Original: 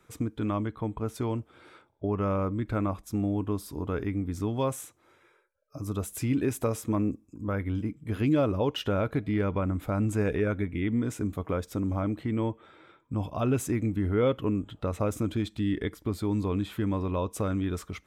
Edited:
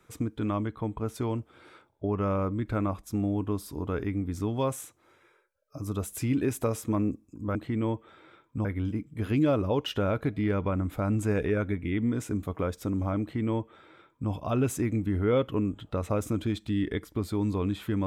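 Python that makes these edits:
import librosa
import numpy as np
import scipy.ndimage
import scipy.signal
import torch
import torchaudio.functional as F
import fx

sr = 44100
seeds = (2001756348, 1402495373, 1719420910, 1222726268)

y = fx.edit(x, sr, fx.duplicate(start_s=12.11, length_s=1.1, to_s=7.55), tone=tone)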